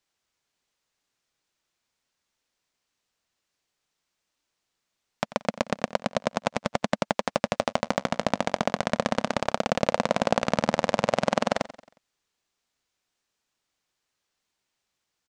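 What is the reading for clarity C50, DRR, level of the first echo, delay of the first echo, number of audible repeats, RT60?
none, none, -17.0 dB, 90 ms, 3, none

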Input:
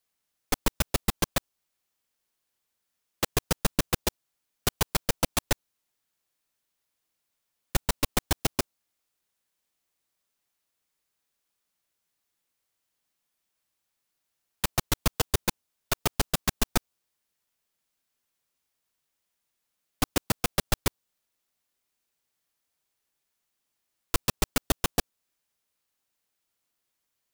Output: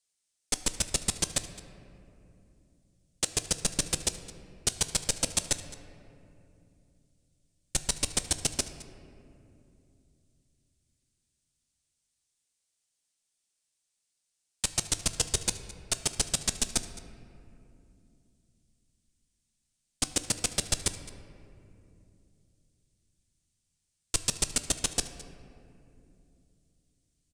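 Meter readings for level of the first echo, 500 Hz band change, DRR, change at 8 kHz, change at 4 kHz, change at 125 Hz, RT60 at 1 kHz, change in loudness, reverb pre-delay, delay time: -19.5 dB, -7.0 dB, 9.5 dB, +5.0 dB, +0.5 dB, -6.5 dB, 2.4 s, -0.5 dB, 9 ms, 0.214 s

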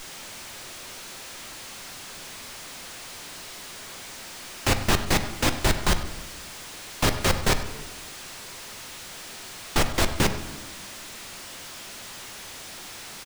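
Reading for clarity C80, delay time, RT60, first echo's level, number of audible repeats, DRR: 11.0 dB, 98 ms, 1.3 s, -15.5 dB, 1, 7.5 dB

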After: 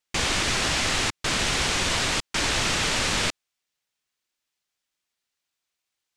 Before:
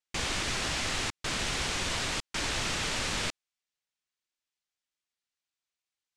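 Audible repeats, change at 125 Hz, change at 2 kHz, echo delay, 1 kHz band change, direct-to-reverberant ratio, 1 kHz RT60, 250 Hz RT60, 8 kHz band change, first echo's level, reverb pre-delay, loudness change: none, +6.5 dB, +7.5 dB, none, +7.5 dB, none, none, none, +7.5 dB, none, none, +7.5 dB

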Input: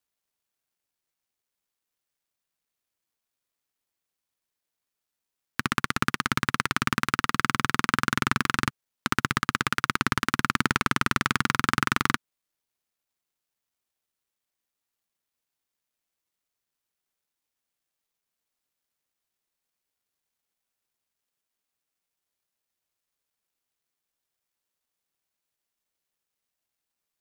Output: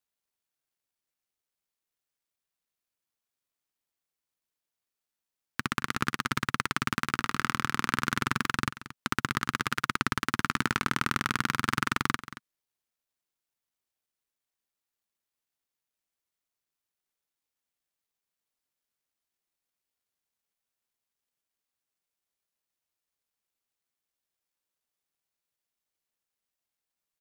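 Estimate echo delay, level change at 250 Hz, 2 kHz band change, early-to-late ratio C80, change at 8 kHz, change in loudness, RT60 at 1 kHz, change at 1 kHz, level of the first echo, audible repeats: 0.227 s, -4.0 dB, -4.0 dB, none, -4.0 dB, -4.0 dB, none, -4.0 dB, -15.0 dB, 1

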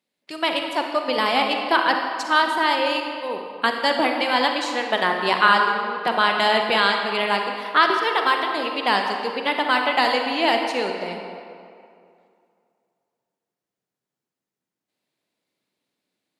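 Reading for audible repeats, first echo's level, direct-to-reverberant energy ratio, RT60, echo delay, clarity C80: none, none, 3.0 dB, 2.4 s, none, 5.0 dB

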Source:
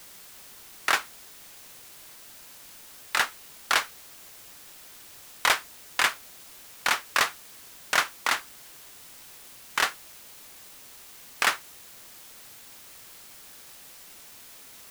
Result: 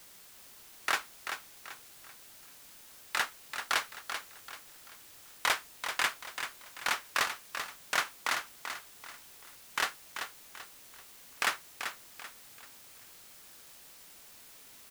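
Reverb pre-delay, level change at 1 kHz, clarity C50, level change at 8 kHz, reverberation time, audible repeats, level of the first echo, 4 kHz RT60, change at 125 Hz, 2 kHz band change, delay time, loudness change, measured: none, -6.0 dB, none, -6.0 dB, none, 3, -8.0 dB, none, -6.0 dB, -6.0 dB, 0.387 s, -7.5 dB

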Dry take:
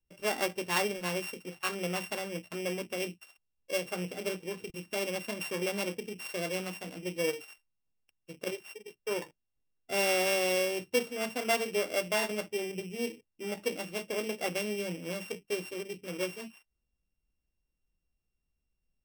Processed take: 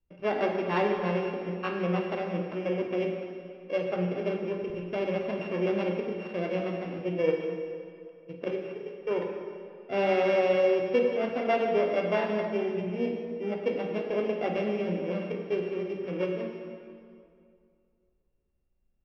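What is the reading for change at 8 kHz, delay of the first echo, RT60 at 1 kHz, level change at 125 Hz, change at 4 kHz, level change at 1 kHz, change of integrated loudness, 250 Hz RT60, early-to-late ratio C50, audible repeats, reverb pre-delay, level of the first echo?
under -25 dB, none, 2.3 s, +7.5 dB, -7.0 dB, +5.0 dB, +4.0 dB, 2.5 s, 3.5 dB, none, 32 ms, none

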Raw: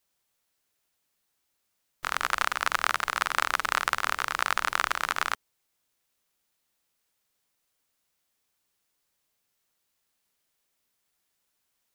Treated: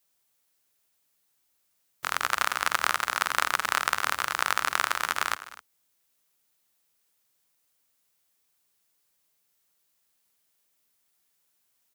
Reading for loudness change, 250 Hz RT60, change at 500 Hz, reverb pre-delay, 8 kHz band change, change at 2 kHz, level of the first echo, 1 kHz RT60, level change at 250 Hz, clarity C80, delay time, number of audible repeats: +0.5 dB, none, 0.0 dB, none, +3.5 dB, +0.5 dB, -19.0 dB, none, 0.0 dB, none, 85 ms, 3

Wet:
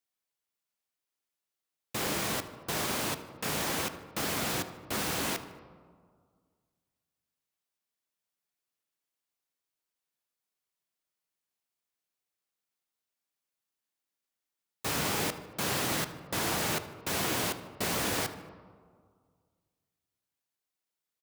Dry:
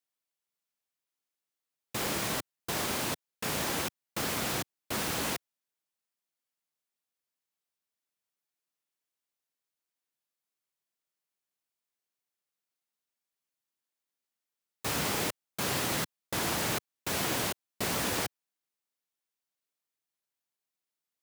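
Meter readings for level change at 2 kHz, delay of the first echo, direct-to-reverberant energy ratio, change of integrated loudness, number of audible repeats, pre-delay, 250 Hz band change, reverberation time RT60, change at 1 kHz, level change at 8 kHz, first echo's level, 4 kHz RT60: +0.5 dB, 76 ms, 9.5 dB, +0.5 dB, 1, 3 ms, +0.5 dB, 1.9 s, +0.5 dB, 0.0 dB, -19.0 dB, 0.85 s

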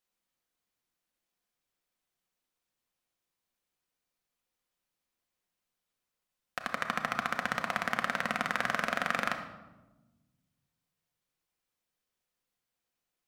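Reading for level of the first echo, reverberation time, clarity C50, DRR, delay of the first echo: none, 1.2 s, 7.5 dB, 4.0 dB, none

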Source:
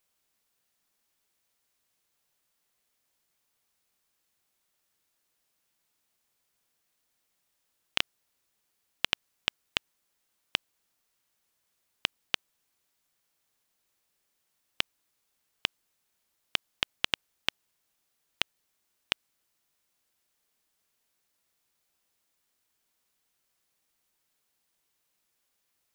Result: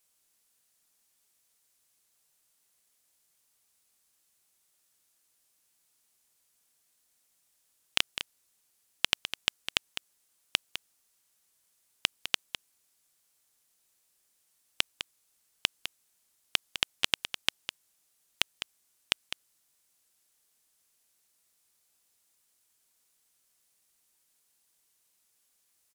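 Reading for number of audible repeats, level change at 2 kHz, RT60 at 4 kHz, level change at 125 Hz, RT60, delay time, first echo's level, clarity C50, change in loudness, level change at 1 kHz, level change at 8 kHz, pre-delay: 1, +1.0 dB, none, -0.5 dB, none, 0.205 s, -10.0 dB, none, +0.5 dB, 0.0 dB, +7.0 dB, none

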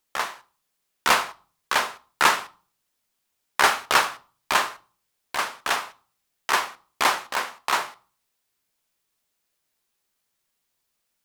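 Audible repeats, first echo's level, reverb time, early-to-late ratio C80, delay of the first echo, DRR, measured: none, none, 0.40 s, 25.5 dB, none, 11.5 dB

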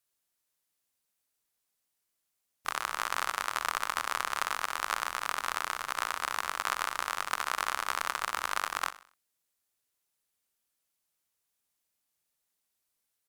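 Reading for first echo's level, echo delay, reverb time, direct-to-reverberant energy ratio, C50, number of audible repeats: -15.5 dB, 63 ms, none, none, none, 3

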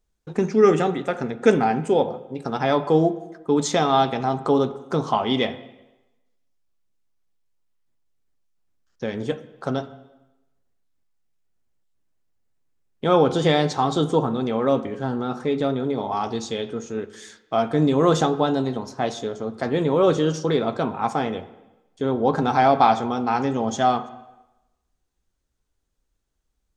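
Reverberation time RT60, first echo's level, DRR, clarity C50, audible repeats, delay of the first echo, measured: 1.0 s, none, 11.5 dB, 14.5 dB, none, none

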